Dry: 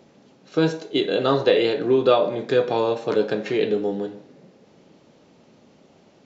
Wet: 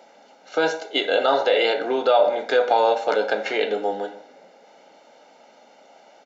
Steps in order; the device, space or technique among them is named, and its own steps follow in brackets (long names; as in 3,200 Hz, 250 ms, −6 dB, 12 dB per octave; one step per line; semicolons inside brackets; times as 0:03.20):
laptop speaker (high-pass filter 310 Hz 24 dB per octave; parametric band 870 Hz +6 dB 0.54 octaves; parametric band 1,800 Hz +4.5 dB 0.5 octaves; brickwall limiter −11.5 dBFS, peak gain reduction 8.5 dB)
comb filter 1.4 ms, depth 66%
level +2.5 dB